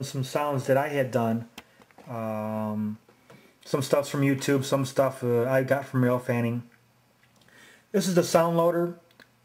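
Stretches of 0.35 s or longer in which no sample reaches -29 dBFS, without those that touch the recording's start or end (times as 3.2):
1.58–2.11
2.92–3.73
6.59–7.94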